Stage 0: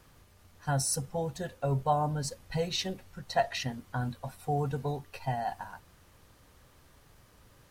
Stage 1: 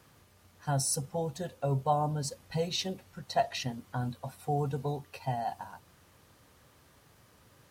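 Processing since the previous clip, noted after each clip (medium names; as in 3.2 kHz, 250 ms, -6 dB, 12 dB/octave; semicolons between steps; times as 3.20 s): dynamic bell 1.7 kHz, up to -6 dB, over -53 dBFS, Q 1.8; high-pass 84 Hz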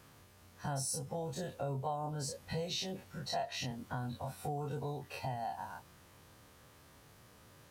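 every event in the spectrogram widened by 60 ms; compression 3:1, threshold -34 dBFS, peak gain reduction 11.5 dB; trim -3 dB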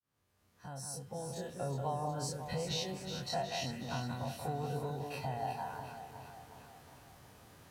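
fade-in on the opening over 1.83 s; on a send: echo whose repeats swap between lows and highs 183 ms, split 2 kHz, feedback 75%, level -5 dB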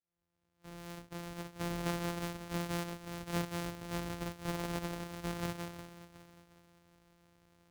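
sorted samples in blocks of 256 samples; upward expansion 1.5:1, over -55 dBFS; trim +1.5 dB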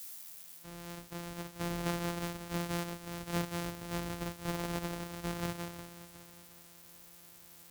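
zero-crossing glitches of -38 dBFS; trim +1 dB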